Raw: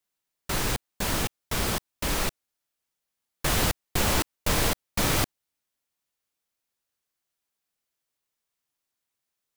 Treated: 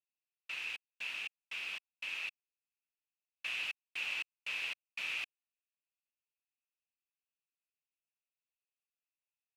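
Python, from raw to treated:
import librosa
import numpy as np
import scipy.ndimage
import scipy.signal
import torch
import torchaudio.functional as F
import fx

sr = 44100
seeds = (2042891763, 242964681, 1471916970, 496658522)

y = fx.leveller(x, sr, passes=1)
y = fx.bandpass_q(y, sr, hz=2600.0, q=11.0)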